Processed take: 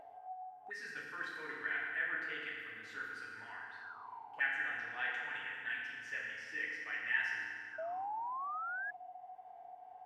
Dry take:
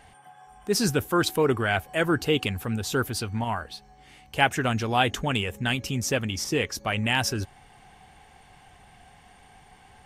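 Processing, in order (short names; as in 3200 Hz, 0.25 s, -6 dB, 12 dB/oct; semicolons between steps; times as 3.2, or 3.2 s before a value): FDN reverb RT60 2.2 s, low-frequency decay 1.1×, high-frequency decay 0.7×, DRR -5.5 dB; auto-wah 640–1800 Hz, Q 12, up, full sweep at -21.5 dBFS; upward compressor, threshold -42 dBFS; painted sound rise, 7.78–8.91, 630–1700 Hz -37 dBFS; gain -3.5 dB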